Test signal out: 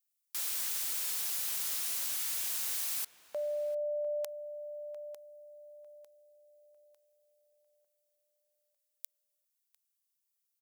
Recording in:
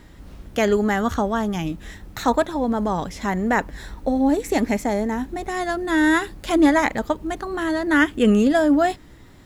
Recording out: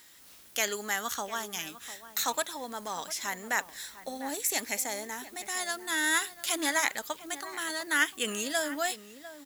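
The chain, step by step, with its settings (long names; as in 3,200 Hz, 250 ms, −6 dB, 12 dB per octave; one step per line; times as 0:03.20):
first difference
slap from a distant wall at 120 metres, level −14 dB
level +6.5 dB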